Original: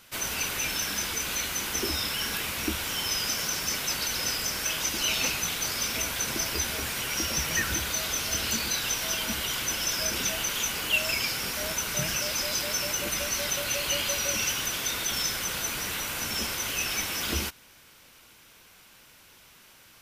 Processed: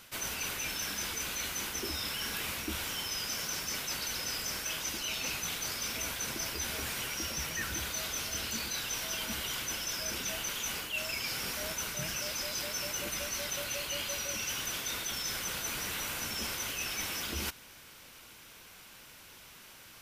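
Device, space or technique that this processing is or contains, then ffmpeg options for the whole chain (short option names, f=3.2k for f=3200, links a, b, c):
compression on the reversed sound: -af "areverse,acompressor=threshold=-35dB:ratio=6,areverse,volume=1.5dB"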